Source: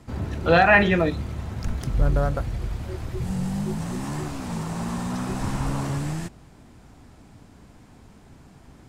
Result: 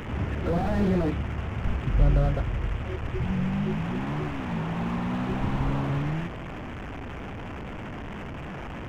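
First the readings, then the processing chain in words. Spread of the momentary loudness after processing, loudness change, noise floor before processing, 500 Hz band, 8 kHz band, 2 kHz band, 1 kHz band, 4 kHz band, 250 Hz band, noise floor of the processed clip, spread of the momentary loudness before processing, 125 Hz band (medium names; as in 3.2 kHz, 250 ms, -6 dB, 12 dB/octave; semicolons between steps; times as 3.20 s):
13 LU, -4.5 dB, -50 dBFS, -6.5 dB, under -10 dB, -12.0 dB, -7.5 dB, -6.5 dB, -0.5 dB, -36 dBFS, 15 LU, 0.0 dB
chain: one-bit delta coder 16 kbps, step -30 dBFS; slew-rate limiter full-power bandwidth 27 Hz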